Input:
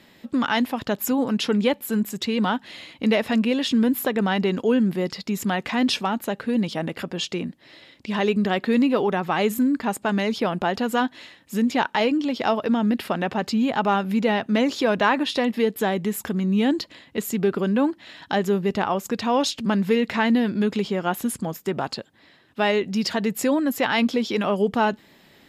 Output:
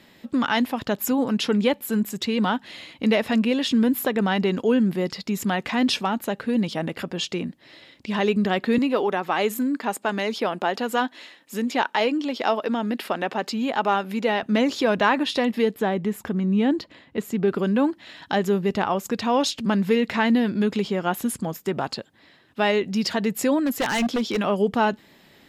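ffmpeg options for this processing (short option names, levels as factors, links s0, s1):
-filter_complex "[0:a]asettb=1/sr,asplit=3[s0][s1][s2];[s0]atrim=end=8.784[s3];[s1]atrim=start=8.78:end=14.43,asetpts=PTS-STARTPTS,afade=t=in:d=0.004:c=qsin,afade=t=out:st=5.646:d=0.004:c=qsin,highpass=280[s4];[s2]atrim=start=14.426[s5];[s3][s4]acrossfade=d=0.004:c1=hsin:c2=qsin[s6];[s6][s5]acrossfade=d=0.004:c1=qsin:c2=hsin,asettb=1/sr,asplit=3[s7][s8][s9];[s7]atrim=end=15.764[s10];[s8]atrim=start=15.76:end=17.48,asetpts=PTS-STARTPTS,afade=t=in:d=0.004:c=qsin,afade=t=out:st=1.716:d=0.004:c=qsin,highshelf=f=3400:g=-11[s11];[s9]atrim=start=17.476[s12];[s10][s11]acrossfade=d=0.004:c1=hsin:c2=qsin[s13];[s13][s12]acrossfade=d=0.004:c1=qsin:c2=hsin,asettb=1/sr,asplit=3[s14][s15][s16];[s14]atrim=end=23.654[s17];[s15]atrim=start=23.65:end=24.41,asetpts=PTS-STARTPTS,afade=t=in:d=0.004:c=qsin,afade=t=out:st=0.756:d=0.004:c=qsin,aeval=exprs='0.141*(abs(mod(val(0)/0.141+3,4)-2)-1)':c=same[s18];[s16]atrim=start=24.406[s19];[s17][s18]acrossfade=d=0.004:c1=hsin:c2=qsin[s20];[s20][s19]acrossfade=d=0.004:c1=qsin:c2=hsin"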